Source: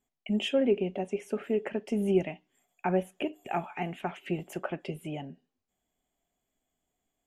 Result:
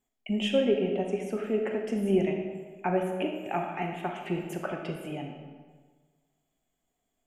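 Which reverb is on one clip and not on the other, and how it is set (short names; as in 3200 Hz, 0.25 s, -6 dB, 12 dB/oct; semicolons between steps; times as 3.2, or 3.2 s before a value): digital reverb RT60 1.5 s, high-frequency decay 0.7×, pre-delay 0 ms, DRR 2.5 dB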